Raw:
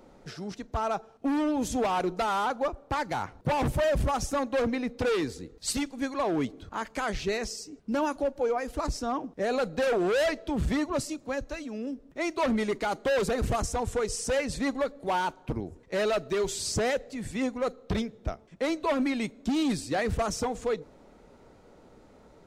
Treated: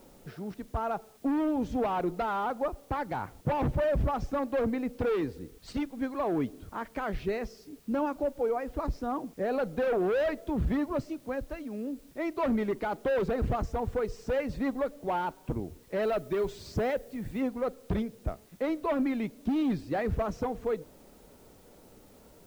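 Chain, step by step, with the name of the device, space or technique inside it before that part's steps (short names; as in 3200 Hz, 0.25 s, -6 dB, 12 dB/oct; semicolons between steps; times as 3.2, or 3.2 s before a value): cassette deck with a dirty head (tape spacing loss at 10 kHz 32 dB; wow and flutter; white noise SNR 32 dB); 16.02–17.41 high shelf 9200 Hz +5.5 dB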